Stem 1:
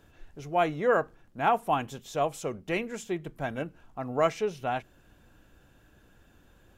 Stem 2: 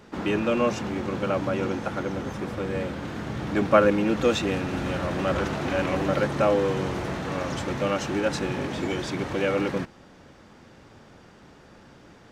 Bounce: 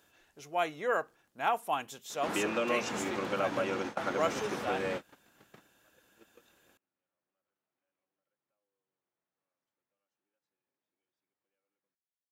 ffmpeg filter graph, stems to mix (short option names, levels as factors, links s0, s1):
-filter_complex "[0:a]highshelf=f=3700:g=7.5,volume=0.631,asplit=2[s0][s1];[1:a]acompressor=threshold=0.0631:ratio=6,adelay=2100,volume=1.06[s2];[s1]apad=whole_len=635829[s3];[s2][s3]sidechaingate=range=0.00112:threshold=0.00158:ratio=16:detection=peak[s4];[s0][s4]amix=inputs=2:normalize=0,highpass=f=560:p=1"